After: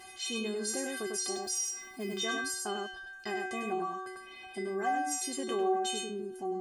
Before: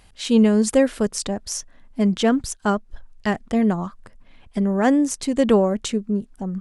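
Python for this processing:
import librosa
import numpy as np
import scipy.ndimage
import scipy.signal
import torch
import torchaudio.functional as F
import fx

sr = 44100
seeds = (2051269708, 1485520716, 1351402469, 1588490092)

y = fx.law_mismatch(x, sr, coded='mu', at=(1.33, 2.18))
y = scipy.signal.sosfilt(scipy.signal.butter(2, 150.0, 'highpass', fs=sr, output='sos'), y)
y = fx.stiff_resonator(y, sr, f0_hz=370.0, decay_s=0.65, stiffness=0.008)
y = y + 10.0 ** (-4.5 / 20.0) * np.pad(y, (int(98 * sr / 1000.0), 0))[:len(y)]
y = fx.env_flatten(y, sr, amount_pct=50)
y = F.gain(torch.from_numpy(y), 5.0).numpy()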